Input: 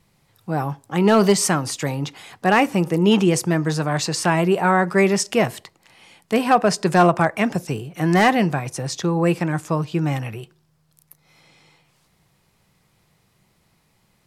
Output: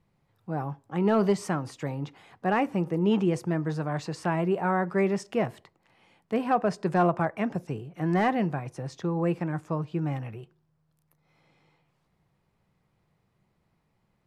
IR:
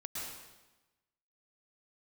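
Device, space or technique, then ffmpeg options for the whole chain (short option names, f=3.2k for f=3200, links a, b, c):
through cloth: -af "highshelf=f=3k:g=-16,volume=-7.5dB"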